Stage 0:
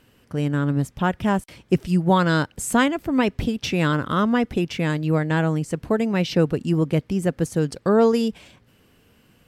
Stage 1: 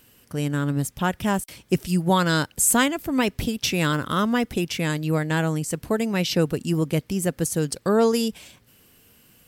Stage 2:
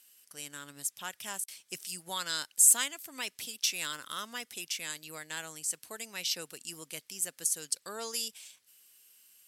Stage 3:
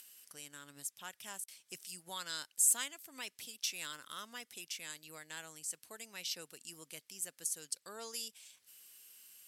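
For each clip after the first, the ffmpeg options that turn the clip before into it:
-af "aemphasis=mode=production:type=75kf,volume=0.75"
-af "lowpass=10000,aderivative"
-af "acompressor=mode=upward:threshold=0.01:ratio=2.5,volume=0.422"

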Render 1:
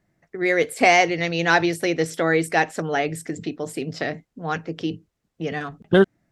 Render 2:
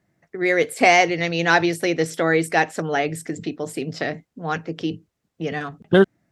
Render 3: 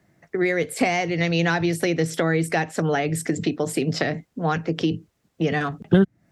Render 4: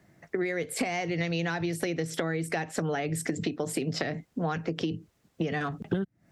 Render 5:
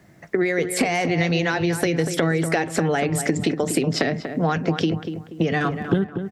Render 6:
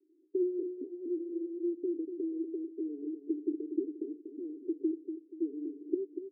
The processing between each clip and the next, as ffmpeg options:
-af "highpass=63,volume=1.12"
-filter_complex "[0:a]acrossover=split=190[s0][s1];[s1]acompressor=threshold=0.0447:ratio=10[s2];[s0][s2]amix=inputs=2:normalize=0,volume=2.24"
-af "acompressor=threshold=0.0398:ratio=6,volume=1.12"
-filter_complex "[0:a]asplit=2[s0][s1];[s1]adelay=240,lowpass=f=1800:p=1,volume=0.398,asplit=2[s2][s3];[s3]adelay=240,lowpass=f=1800:p=1,volume=0.38,asplit=2[s4][s5];[s5]adelay=240,lowpass=f=1800:p=1,volume=0.38,asplit=2[s6][s7];[s7]adelay=240,lowpass=f=1800:p=1,volume=0.38[s8];[s0][s2][s4][s6][s8]amix=inputs=5:normalize=0,volume=2.66"
-af "asuperpass=centerf=340:order=8:qfactor=3,volume=0.398"

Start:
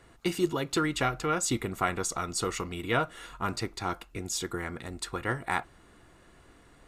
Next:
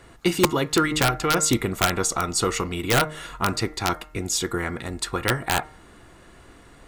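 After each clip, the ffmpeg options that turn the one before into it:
-af "aeval=exprs='(mod(7.5*val(0)+1,2)-1)/7.5':c=same,bandreject=f=153.4:t=h:w=4,bandreject=f=306.8:t=h:w=4,bandreject=f=460.2:t=h:w=4,bandreject=f=613.6:t=h:w=4,bandreject=f=767:t=h:w=4,bandreject=f=920.4:t=h:w=4,bandreject=f=1073.8:t=h:w=4,bandreject=f=1227.2:t=h:w=4,bandreject=f=1380.6:t=h:w=4,bandreject=f=1534:t=h:w=4,bandreject=f=1687.4:t=h:w=4,bandreject=f=1840.8:t=h:w=4,bandreject=f=1994.2:t=h:w=4,bandreject=f=2147.6:t=h:w=4,volume=2.51"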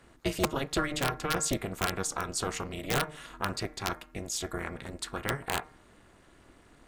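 -af "tremolo=f=290:d=0.974,volume=0.562"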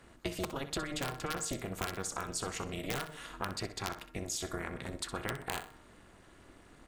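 -af "acompressor=threshold=0.0224:ratio=6,aecho=1:1:63|126|189:0.251|0.0829|0.0274"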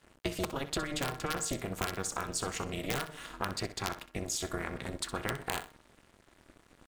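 -af "aeval=exprs='sgn(val(0))*max(abs(val(0))-0.0015,0)':c=same,volume=1.41"

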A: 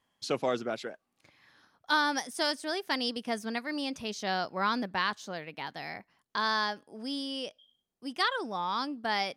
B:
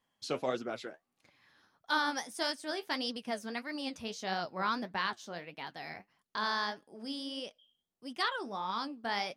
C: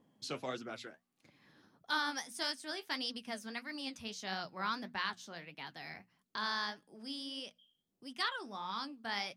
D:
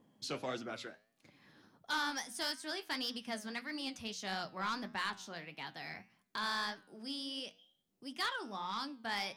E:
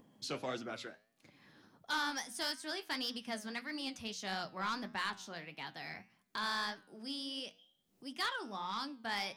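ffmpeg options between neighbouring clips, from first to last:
-af "flanger=delay=3.7:depth=9.8:regen=52:speed=1.6:shape=triangular"
-filter_complex "[0:a]equalizer=f=530:w=0.66:g=-7.5,bandreject=f=60:t=h:w=6,bandreject=f=120:t=h:w=6,bandreject=f=180:t=h:w=6,bandreject=f=240:t=h:w=6,acrossover=split=130|590|2400[s0][s1][s2][s3];[s1]acompressor=mode=upward:threshold=0.00282:ratio=2.5[s4];[s0][s4][s2][s3]amix=inputs=4:normalize=0,volume=0.891"
-af "asoftclip=type=tanh:threshold=0.0282,flanger=delay=8.7:depth=2.2:regen=90:speed=1.8:shape=triangular,volume=2.11"
-af "acompressor=mode=upward:threshold=0.00112:ratio=2.5"

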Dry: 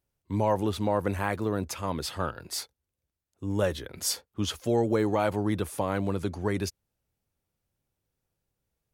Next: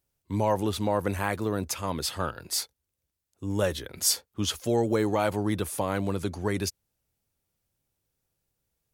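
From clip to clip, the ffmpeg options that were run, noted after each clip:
-af "highshelf=f=3600:g=6.5"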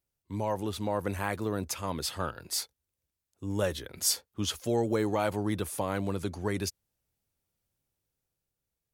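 -af "dynaudnorm=f=110:g=17:m=1.5,volume=0.473"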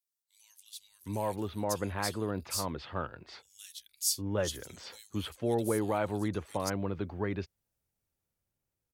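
-filter_complex "[0:a]acrossover=split=3300[s0][s1];[s0]adelay=760[s2];[s2][s1]amix=inputs=2:normalize=0,volume=0.794"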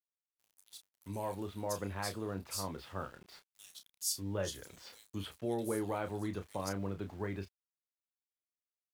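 -filter_complex "[0:a]aeval=exprs='val(0)*gte(abs(val(0)),0.00316)':c=same,asplit=2[s0][s1];[s1]adelay=31,volume=0.398[s2];[s0][s2]amix=inputs=2:normalize=0,volume=0.501"

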